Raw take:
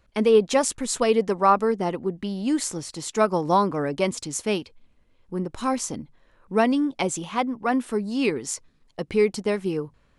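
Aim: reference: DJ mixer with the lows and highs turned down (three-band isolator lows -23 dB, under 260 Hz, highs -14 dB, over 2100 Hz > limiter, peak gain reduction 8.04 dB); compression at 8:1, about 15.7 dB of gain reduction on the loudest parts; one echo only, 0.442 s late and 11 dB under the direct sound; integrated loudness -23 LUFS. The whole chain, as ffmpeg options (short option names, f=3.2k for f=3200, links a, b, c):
-filter_complex "[0:a]acompressor=threshold=-29dB:ratio=8,acrossover=split=260 2100:gain=0.0708 1 0.2[a][b][c];[a][b][c]amix=inputs=3:normalize=0,aecho=1:1:442:0.282,volume=15.5dB,alimiter=limit=-11.5dB:level=0:latency=1"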